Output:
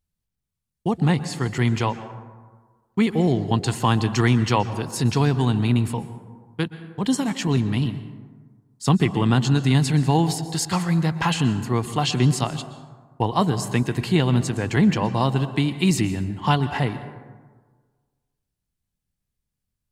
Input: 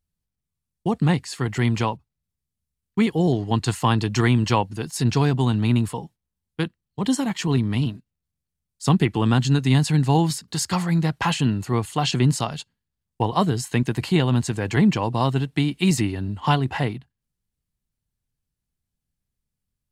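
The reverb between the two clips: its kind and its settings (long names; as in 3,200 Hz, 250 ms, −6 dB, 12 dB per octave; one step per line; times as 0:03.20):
dense smooth reverb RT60 1.5 s, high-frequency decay 0.4×, pre-delay 110 ms, DRR 12 dB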